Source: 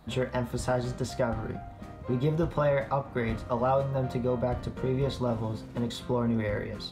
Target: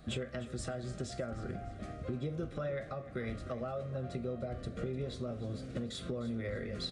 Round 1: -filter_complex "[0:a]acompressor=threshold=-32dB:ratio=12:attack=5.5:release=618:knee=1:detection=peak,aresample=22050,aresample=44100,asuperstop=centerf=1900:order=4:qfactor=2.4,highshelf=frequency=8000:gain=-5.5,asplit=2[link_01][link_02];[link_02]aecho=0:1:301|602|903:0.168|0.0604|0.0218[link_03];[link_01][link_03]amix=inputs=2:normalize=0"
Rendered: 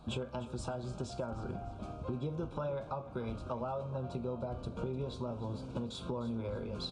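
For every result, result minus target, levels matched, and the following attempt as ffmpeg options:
2,000 Hz band −6.0 dB; 8,000 Hz band −4.0 dB
-filter_complex "[0:a]acompressor=threshold=-32dB:ratio=12:attack=5.5:release=618:knee=1:detection=peak,aresample=22050,aresample=44100,asuperstop=centerf=930:order=4:qfactor=2.4,highshelf=frequency=8000:gain=-5.5,asplit=2[link_01][link_02];[link_02]aecho=0:1:301|602|903:0.168|0.0604|0.0218[link_03];[link_01][link_03]amix=inputs=2:normalize=0"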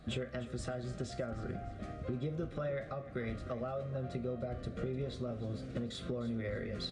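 8,000 Hz band −4.0 dB
-filter_complex "[0:a]acompressor=threshold=-32dB:ratio=12:attack=5.5:release=618:knee=1:detection=peak,aresample=22050,aresample=44100,asuperstop=centerf=930:order=4:qfactor=2.4,highshelf=frequency=8000:gain=3.5,asplit=2[link_01][link_02];[link_02]aecho=0:1:301|602|903:0.168|0.0604|0.0218[link_03];[link_01][link_03]amix=inputs=2:normalize=0"

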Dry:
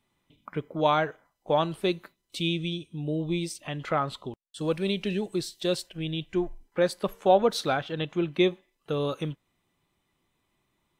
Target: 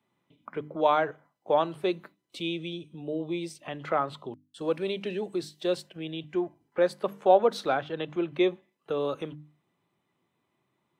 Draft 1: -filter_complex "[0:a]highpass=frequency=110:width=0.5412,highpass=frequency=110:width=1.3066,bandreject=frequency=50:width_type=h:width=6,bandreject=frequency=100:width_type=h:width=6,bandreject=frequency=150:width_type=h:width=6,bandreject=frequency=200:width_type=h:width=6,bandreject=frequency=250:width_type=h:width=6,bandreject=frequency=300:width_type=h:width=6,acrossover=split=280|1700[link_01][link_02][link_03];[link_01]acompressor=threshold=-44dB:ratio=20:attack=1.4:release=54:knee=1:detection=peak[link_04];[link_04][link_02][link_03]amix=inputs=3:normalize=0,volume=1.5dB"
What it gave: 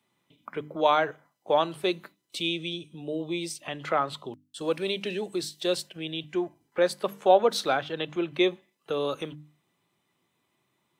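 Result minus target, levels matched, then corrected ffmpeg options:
4,000 Hz band +6.0 dB
-filter_complex "[0:a]highpass=frequency=110:width=0.5412,highpass=frequency=110:width=1.3066,highshelf=frequency=2700:gain=-11,bandreject=frequency=50:width_type=h:width=6,bandreject=frequency=100:width_type=h:width=6,bandreject=frequency=150:width_type=h:width=6,bandreject=frequency=200:width_type=h:width=6,bandreject=frequency=250:width_type=h:width=6,bandreject=frequency=300:width_type=h:width=6,acrossover=split=280|1700[link_01][link_02][link_03];[link_01]acompressor=threshold=-44dB:ratio=20:attack=1.4:release=54:knee=1:detection=peak[link_04];[link_04][link_02][link_03]amix=inputs=3:normalize=0,volume=1.5dB"

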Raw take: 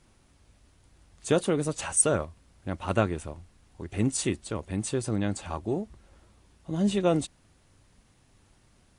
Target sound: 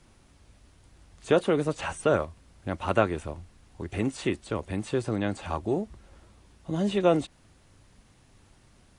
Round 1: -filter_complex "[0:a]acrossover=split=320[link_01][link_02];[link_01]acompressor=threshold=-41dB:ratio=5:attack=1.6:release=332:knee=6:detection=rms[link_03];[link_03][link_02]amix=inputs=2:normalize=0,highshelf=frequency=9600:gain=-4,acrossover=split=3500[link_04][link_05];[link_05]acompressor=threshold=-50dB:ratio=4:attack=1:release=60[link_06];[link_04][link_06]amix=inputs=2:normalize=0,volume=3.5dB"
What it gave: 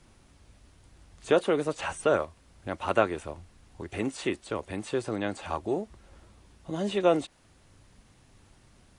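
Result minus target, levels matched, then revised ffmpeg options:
downward compressor: peak gain reduction +8.5 dB
-filter_complex "[0:a]acrossover=split=320[link_01][link_02];[link_01]acompressor=threshold=-30.5dB:ratio=5:attack=1.6:release=332:knee=6:detection=rms[link_03];[link_03][link_02]amix=inputs=2:normalize=0,highshelf=frequency=9600:gain=-4,acrossover=split=3500[link_04][link_05];[link_05]acompressor=threshold=-50dB:ratio=4:attack=1:release=60[link_06];[link_04][link_06]amix=inputs=2:normalize=0,volume=3.5dB"

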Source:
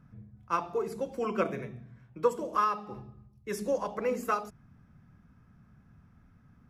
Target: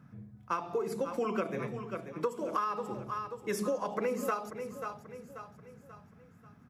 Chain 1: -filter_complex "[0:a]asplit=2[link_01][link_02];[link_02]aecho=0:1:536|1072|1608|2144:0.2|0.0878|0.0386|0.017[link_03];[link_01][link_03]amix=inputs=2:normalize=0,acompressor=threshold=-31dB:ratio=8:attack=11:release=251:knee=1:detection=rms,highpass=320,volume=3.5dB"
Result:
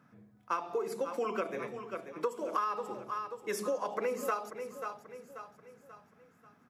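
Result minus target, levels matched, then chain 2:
125 Hz band −10.0 dB
-filter_complex "[0:a]asplit=2[link_01][link_02];[link_02]aecho=0:1:536|1072|1608|2144:0.2|0.0878|0.0386|0.017[link_03];[link_01][link_03]amix=inputs=2:normalize=0,acompressor=threshold=-31dB:ratio=8:attack=11:release=251:knee=1:detection=rms,highpass=120,volume=3.5dB"

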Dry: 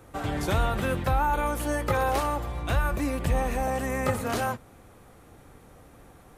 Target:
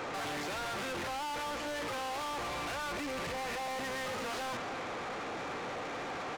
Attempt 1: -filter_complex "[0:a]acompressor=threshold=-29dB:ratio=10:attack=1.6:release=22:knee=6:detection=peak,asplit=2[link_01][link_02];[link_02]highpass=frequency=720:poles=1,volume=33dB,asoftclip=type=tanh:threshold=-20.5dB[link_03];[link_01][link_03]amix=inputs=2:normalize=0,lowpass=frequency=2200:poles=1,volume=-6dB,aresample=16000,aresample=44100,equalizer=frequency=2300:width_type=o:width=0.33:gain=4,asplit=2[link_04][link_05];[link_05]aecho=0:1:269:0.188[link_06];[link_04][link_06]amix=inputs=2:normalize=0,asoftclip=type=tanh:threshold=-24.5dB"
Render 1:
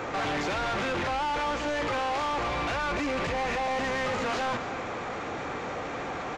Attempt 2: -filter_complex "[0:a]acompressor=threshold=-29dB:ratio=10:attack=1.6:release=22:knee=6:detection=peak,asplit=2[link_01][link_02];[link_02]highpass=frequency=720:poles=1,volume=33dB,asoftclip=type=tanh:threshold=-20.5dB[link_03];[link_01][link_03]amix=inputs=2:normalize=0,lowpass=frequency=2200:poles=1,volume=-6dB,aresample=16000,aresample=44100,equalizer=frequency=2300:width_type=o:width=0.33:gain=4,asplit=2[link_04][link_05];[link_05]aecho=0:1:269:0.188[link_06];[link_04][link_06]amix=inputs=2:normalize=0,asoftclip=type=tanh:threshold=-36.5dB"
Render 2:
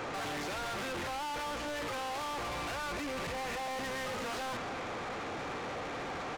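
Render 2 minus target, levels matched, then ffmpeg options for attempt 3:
125 Hz band +2.0 dB
-filter_complex "[0:a]acompressor=threshold=-29dB:ratio=10:attack=1.6:release=22:knee=6:detection=peak,asplit=2[link_01][link_02];[link_02]highpass=frequency=720:poles=1,volume=33dB,asoftclip=type=tanh:threshold=-20.5dB[link_03];[link_01][link_03]amix=inputs=2:normalize=0,lowpass=frequency=2200:poles=1,volume=-6dB,aresample=16000,aresample=44100,highpass=frequency=160:poles=1,equalizer=frequency=2300:width_type=o:width=0.33:gain=4,asplit=2[link_04][link_05];[link_05]aecho=0:1:269:0.188[link_06];[link_04][link_06]amix=inputs=2:normalize=0,asoftclip=type=tanh:threshold=-36.5dB"

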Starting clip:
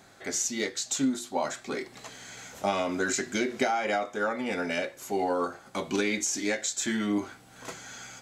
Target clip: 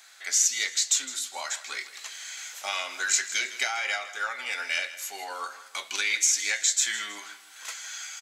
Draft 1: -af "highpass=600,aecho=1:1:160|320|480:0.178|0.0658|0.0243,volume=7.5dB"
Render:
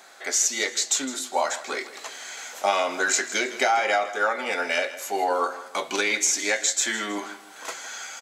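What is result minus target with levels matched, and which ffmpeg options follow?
500 Hz band +15.0 dB
-af "highpass=1900,aecho=1:1:160|320|480:0.178|0.0658|0.0243,volume=7.5dB"

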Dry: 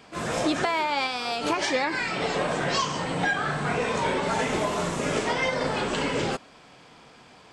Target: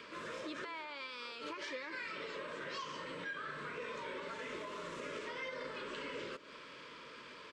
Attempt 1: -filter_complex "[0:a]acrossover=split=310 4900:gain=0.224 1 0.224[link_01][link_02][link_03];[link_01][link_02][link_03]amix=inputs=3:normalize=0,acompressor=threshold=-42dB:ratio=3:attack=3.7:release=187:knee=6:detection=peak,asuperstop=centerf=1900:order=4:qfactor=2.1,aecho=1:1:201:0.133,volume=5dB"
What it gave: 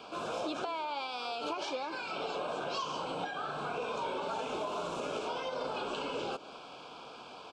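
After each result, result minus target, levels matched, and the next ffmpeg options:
downward compressor: peak gain reduction −6.5 dB; 2,000 Hz band −6.5 dB
-filter_complex "[0:a]acrossover=split=310 4900:gain=0.224 1 0.224[link_01][link_02][link_03];[link_01][link_02][link_03]amix=inputs=3:normalize=0,acompressor=threshold=-52dB:ratio=3:attack=3.7:release=187:knee=6:detection=peak,asuperstop=centerf=1900:order=4:qfactor=2.1,aecho=1:1:201:0.133,volume=5dB"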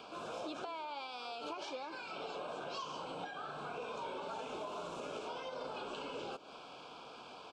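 2,000 Hz band −6.0 dB
-filter_complex "[0:a]acrossover=split=310 4900:gain=0.224 1 0.224[link_01][link_02][link_03];[link_01][link_02][link_03]amix=inputs=3:normalize=0,acompressor=threshold=-52dB:ratio=3:attack=3.7:release=187:knee=6:detection=peak,asuperstop=centerf=760:order=4:qfactor=2.1,aecho=1:1:201:0.133,volume=5dB"

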